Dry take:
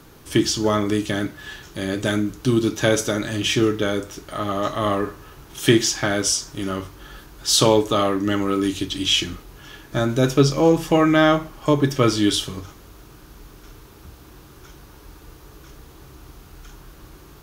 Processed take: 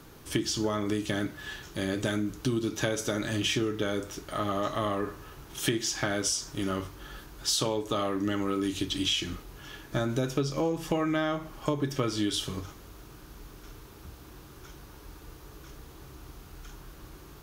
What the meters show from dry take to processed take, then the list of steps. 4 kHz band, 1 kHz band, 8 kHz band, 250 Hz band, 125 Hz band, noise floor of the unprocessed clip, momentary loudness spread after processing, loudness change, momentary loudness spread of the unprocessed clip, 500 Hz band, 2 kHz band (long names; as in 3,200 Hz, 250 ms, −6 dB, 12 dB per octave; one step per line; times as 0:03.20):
−8.5 dB, −10.0 dB, −8.5 dB, −10.0 dB, −9.5 dB, −46 dBFS, 21 LU, −10.0 dB, 13 LU, −10.5 dB, −9.0 dB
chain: downward compressor 10 to 1, threshold −21 dBFS, peak gain reduction 12 dB
level −3.5 dB